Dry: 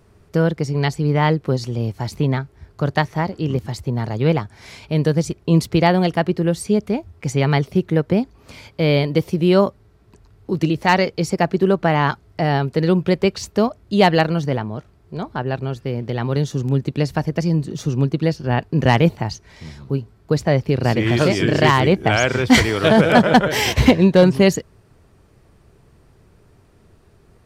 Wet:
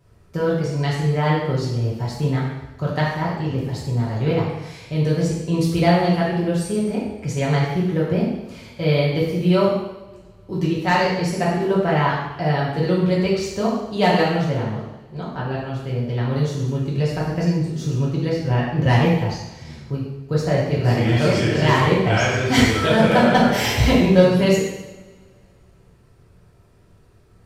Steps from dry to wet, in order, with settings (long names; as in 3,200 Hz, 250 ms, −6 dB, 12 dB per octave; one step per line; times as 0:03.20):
coupled-rooms reverb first 0.92 s, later 2.8 s, from −25 dB, DRR −6.5 dB
level −9 dB